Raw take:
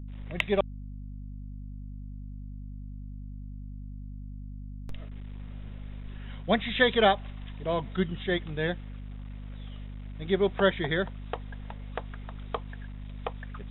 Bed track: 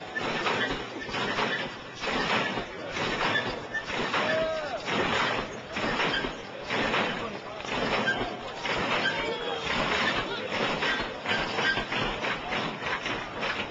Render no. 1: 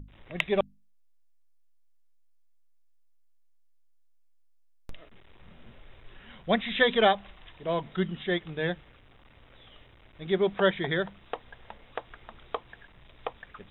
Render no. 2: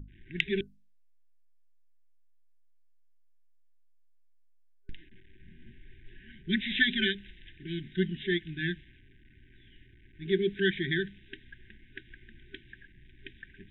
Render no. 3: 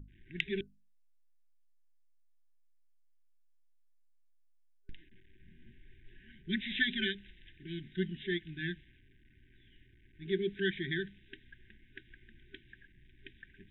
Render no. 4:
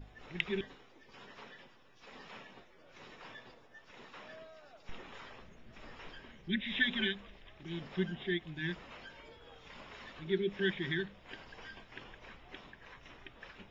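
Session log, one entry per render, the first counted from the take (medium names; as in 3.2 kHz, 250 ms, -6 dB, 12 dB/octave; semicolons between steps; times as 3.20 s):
hum notches 50/100/150/200/250 Hz
level-controlled noise filter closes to 1.9 kHz, open at -24.5 dBFS; FFT band-reject 400–1500 Hz
trim -5.5 dB
add bed track -24.5 dB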